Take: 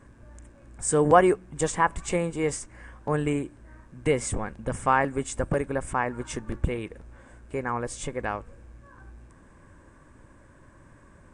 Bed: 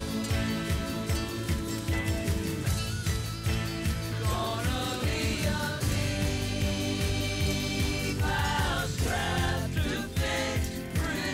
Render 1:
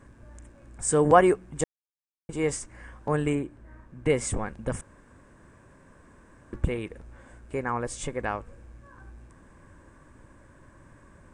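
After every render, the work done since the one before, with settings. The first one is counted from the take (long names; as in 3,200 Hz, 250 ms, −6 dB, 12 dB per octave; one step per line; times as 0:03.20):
0:01.64–0:02.29: silence
0:03.35–0:04.10: high-shelf EQ 3,800 Hz −10 dB
0:04.81–0:06.53: fill with room tone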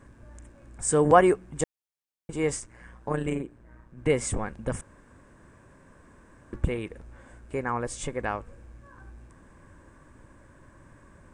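0:02.60–0:03.98: amplitude modulation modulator 120 Hz, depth 50%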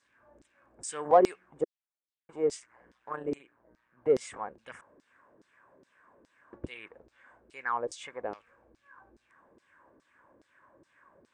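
auto-filter band-pass saw down 2.4 Hz 330–5,200 Hz
in parallel at −12 dB: soft clipping −22.5 dBFS, distortion −9 dB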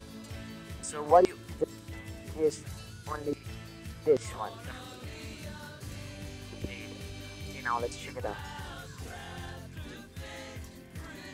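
mix in bed −14 dB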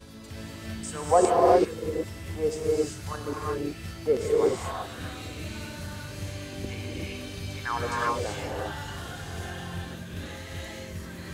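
reverb whose tail is shaped and stops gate 410 ms rising, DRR −4 dB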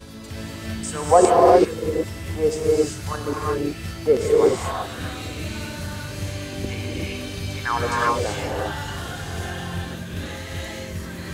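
level +6.5 dB
brickwall limiter −3 dBFS, peak gain reduction 2.5 dB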